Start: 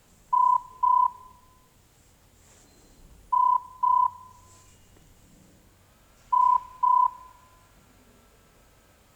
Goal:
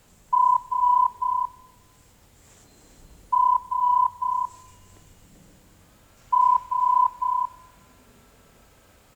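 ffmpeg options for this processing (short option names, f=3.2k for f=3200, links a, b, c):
-af "aecho=1:1:387:0.501,volume=2dB"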